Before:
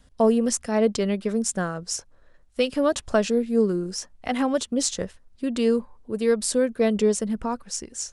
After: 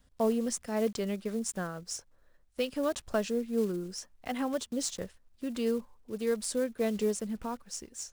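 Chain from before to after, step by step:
one scale factor per block 5 bits
level −9 dB

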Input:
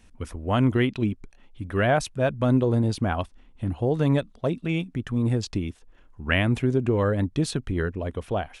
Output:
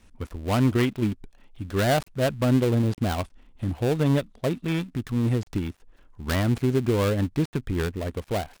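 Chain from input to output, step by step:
gap after every zero crossing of 0.21 ms

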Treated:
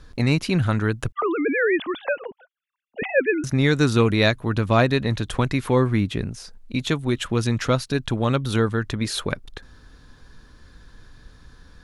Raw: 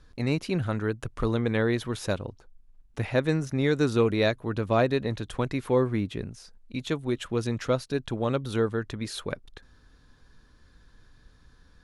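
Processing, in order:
0:01.12–0:03.44: three sine waves on the formant tracks
dynamic equaliser 480 Hz, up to −7 dB, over −37 dBFS, Q 0.85
level +9 dB

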